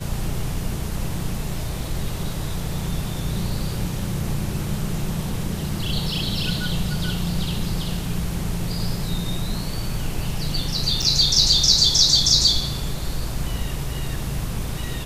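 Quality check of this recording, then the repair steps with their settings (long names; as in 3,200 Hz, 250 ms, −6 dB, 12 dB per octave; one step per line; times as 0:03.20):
0:11.02–0:11.03: drop-out 5.7 ms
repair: repair the gap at 0:11.02, 5.7 ms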